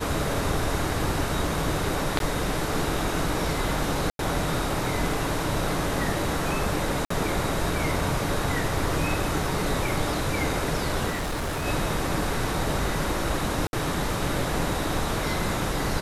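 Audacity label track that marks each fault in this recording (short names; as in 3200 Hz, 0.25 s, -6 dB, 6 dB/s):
2.190000	2.200000	gap 12 ms
4.100000	4.190000	gap 92 ms
7.050000	7.100000	gap 54 ms
11.100000	11.660000	clipped -25.5 dBFS
13.670000	13.730000	gap 61 ms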